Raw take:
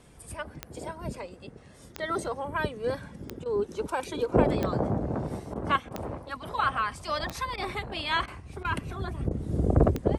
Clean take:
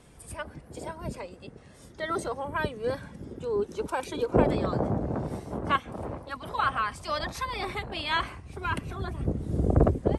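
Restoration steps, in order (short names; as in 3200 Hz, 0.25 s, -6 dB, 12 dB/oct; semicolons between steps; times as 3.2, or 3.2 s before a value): de-click; interpolate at 3.44/5.54/5.89/7.56/8.26/8.63/9.29, 16 ms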